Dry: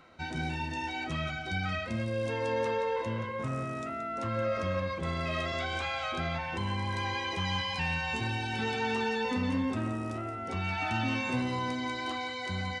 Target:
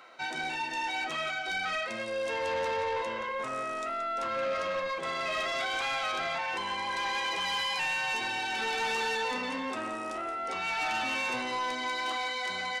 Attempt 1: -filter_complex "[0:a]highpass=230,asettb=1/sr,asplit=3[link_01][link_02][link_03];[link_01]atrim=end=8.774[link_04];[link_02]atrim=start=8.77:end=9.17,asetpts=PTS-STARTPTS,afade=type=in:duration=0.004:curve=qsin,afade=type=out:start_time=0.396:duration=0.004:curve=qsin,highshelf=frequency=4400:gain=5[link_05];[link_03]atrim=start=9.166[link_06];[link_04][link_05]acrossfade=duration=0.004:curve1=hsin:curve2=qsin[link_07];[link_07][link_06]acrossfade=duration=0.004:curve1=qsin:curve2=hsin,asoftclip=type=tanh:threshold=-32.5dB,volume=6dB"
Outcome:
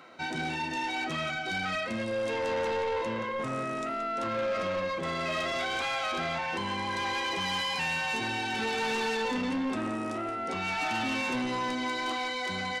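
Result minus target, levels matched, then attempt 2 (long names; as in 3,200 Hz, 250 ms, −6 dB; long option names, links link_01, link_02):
250 Hz band +8.5 dB
-filter_complex "[0:a]highpass=540,asettb=1/sr,asplit=3[link_01][link_02][link_03];[link_01]atrim=end=8.774[link_04];[link_02]atrim=start=8.77:end=9.17,asetpts=PTS-STARTPTS,afade=type=in:duration=0.004:curve=qsin,afade=type=out:start_time=0.396:duration=0.004:curve=qsin,highshelf=frequency=4400:gain=5[link_05];[link_03]atrim=start=9.166[link_06];[link_04][link_05]acrossfade=duration=0.004:curve1=hsin:curve2=qsin[link_07];[link_07][link_06]acrossfade=duration=0.004:curve1=qsin:curve2=hsin,asoftclip=type=tanh:threshold=-32.5dB,volume=6dB"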